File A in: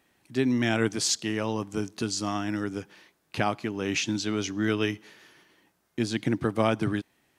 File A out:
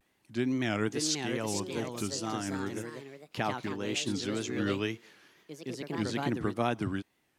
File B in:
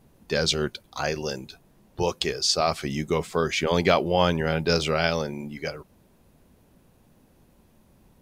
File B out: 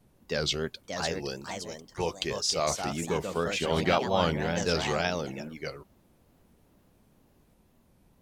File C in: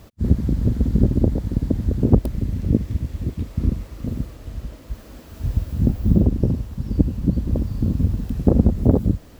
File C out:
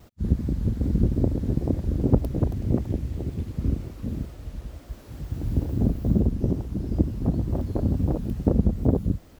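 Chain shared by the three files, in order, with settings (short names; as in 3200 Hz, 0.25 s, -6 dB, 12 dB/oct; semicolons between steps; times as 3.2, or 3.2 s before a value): wow and flutter 140 cents; echoes that change speed 0.633 s, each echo +3 st, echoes 2, each echo -6 dB; gain -5.5 dB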